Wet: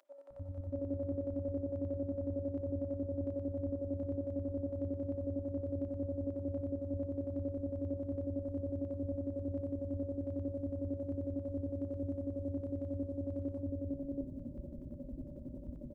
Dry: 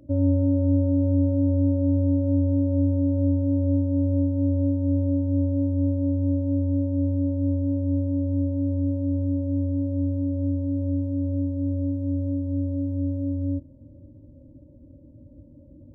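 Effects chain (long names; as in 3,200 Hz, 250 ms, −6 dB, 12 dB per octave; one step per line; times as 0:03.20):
comb filter 5 ms, depth 67%
reversed playback
downward compressor 6 to 1, threshold −39 dBFS, peak gain reduction 16.5 dB
reversed playback
square-wave tremolo 11 Hz, depth 60%, duty 35%
three-band delay without the direct sound highs, lows, mids 300/630 ms, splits 180/740 Hz
convolution reverb RT60 1.0 s, pre-delay 46 ms, DRR 11.5 dB
level +8 dB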